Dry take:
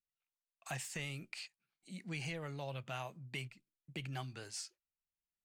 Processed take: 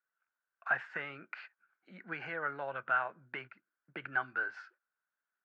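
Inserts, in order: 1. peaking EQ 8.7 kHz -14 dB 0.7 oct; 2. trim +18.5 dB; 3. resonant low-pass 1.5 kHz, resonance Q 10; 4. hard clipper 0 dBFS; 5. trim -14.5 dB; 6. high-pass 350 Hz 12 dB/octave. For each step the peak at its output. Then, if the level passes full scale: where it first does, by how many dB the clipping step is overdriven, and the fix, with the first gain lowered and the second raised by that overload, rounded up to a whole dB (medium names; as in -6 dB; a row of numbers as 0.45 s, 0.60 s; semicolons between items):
-29.5 dBFS, -11.0 dBFS, -3.5 dBFS, -3.5 dBFS, -18.0 dBFS, -18.5 dBFS; nothing clips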